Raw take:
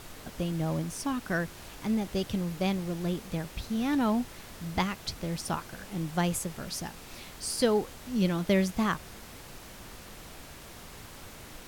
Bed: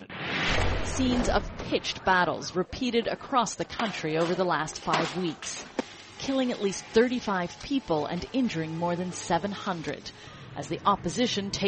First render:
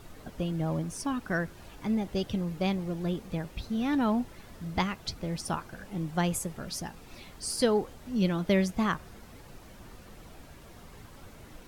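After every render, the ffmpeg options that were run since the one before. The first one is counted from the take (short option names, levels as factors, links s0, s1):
-af "afftdn=nr=9:nf=-47"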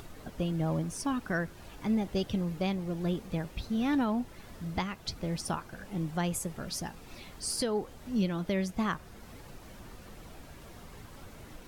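-af "alimiter=limit=0.1:level=0:latency=1:release=376,acompressor=mode=upward:threshold=0.00631:ratio=2.5"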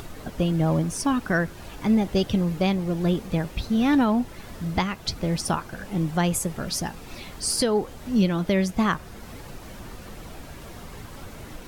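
-af "volume=2.66"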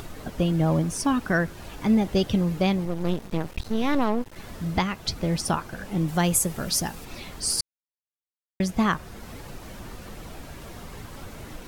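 -filter_complex "[0:a]asettb=1/sr,asplit=3[s0][s1][s2];[s0]atrim=end=2.854[s3];[s1]atrim=start=2.85:end=4.36,asetpts=PTS-STARTPTS,afade=t=in:d=0.004:c=qsin,afade=t=out:st=1.506:d=0.004:c=qsin,aeval=exprs='max(val(0),0)':c=same[s4];[s2]atrim=start=4.356[s5];[s3][s4]acrossfade=d=0.004:c1=hsin:c2=qsin[s6];[s6][s5]acrossfade=d=0.004:c1=qsin:c2=hsin,asettb=1/sr,asplit=3[s7][s8][s9];[s7]atrim=end=6.084[s10];[s8]atrim=start=6.08:end=7.05,asetpts=PTS-STARTPTS,afade=t=in:d=0.004:c=qsin,afade=t=out:st=0.966:d=0.004:c=qsin,highshelf=f=6200:g=8[s11];[s9]atrim=start=7.046[s12];[s10][s11]acrossfade=d=0.004:c1=hsin:c2=qsin[s13];[s13][s12]acrossfade=d=0.004:c1=qsin:c2=hsin,asplit=3[s14][s15][s16];[s14]atrim=end=7.61,asetpts=PTS-STARTPTS,afade=t=out:st=7.606:d=0.004:c=hsin[s17];[s15]atrim=start=7.61:end=8.6,asetpts=PTS-STARTPTS,volume=0[s18];[s16]atrim=start=8.6,asetpts=PTS-STARTPTS,afade=t=in:d=0.004:c=hsin[s19];[s17][s18][s19]concat=n=3:v=0:a=1"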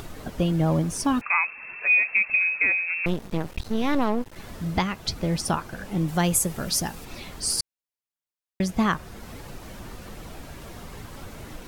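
-filter_complex "[0:a]asettb=1/sr,asplit=3[s0][s1][s2];[s0]atrim=end=1.214[s3];[s1]atrim=start=1.21:end=3.06,asetpts=PTS-STARTPTS,afade=t=in:d=0.004:c=qsin,afade=t=out:st=1.846:d=0.004:c=qsin,lowpass=f=2300:t=q:w=0.5098,lowpass=f=2300:t=q:w=0.6013,lowpass=f=2300:t=q:w=0.9,lowpass=f=2300:t=q:w=2.563,afreqshift=-2700[s4];[s2]atrim=start=3.056[s5];[s3][s4]acrossfade=d=0.004:c1=hsin:c2=qsin[s6];[s6][s5]acrossfade=d=0.004:c1=qsin:c2=hsin"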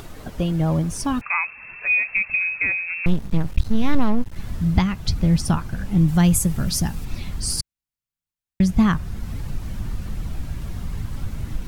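-af "asubboost=boost=6:cutoff=180"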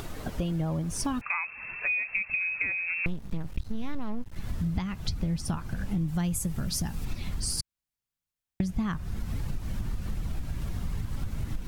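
-af "acompressor=threshold=0.0447:ratio=6"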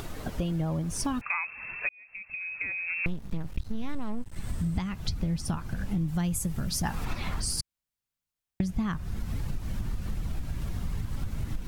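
-filter_complex "[0:a]asettb=1/sr,asplit=3[s0][s1][s2];[s0]atrim=end=3.894[s3];[s1]atrim=start=3.89:end=4.89,asetpts=PTS-STARTPTS,afade=t=in:d=0.004:c=qsin,afade=t=out:st=0.996:d=0.004:c=qsin,equalizer=f=8300:w=4.6:g=13[s4];[s2]atrim=start=4.886[s5];[s3][s4]acrossfade=d=0.004:c1=hsin:c2=qsin[s6];[s6][s5]acrossfade=d=0.004:c1=qsin:c2=hsin,asettb=1/sr,asplit=3[s7][s8][s9];[s7]atrim=end=6.834[s10];[s8]atrim=start=6.83:end=7.42,asetpts=PTS-STARTPTS,afade=t=in:d=0.004:c=qsin,afade=t=out:st=0.586:d=0.004:c=qsin,equalizer=f=1100:w=0.51:g=12.5[s11];[s9]atrim=start=7.416[s12];[s10][s11]acrossfade=d=0.004:c1=hsin:c2=qsin[s13];[s13][s12]acrossfade=d=0.004:c1=qsin:c2=hsin,asplit=2[s14][s15];[s14]atrim=end=1.89,asetpts=PTS-STARTPTS,afade=t=out:st=1.886:d=0.004:c=hsin[s16];[s15]atrim=start=1.89,asetpts=PTS-STARTPTS,afade=t=in:d=1.17[s17];[s16][s17]concat=n=2:v=0:a=1"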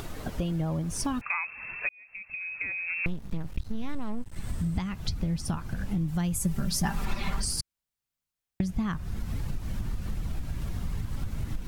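-filter_complex "[0:a]asettb=1/sr,asplit=3[s0][s1][s2];[s0]atrim=end=6.394[s3];[s1]atrim=start=6.39:end=7.45,asetpts=PTS-STARTPTS,afade=t=in:d=0.004:c=qsin,afade=t=out:st=1.056:d=0.004:c=qsin,aecho=1:1:5.1:0.65,atrim=end_sample=46746[s4];[s2]atrim=start=7.446[s5];[s3][s4]acrossfade=d=0.004:c1=hsin:c2=qsin[s6];[s6][s5]acrossfade=d=0.004:c1=qsin:c2=hsin"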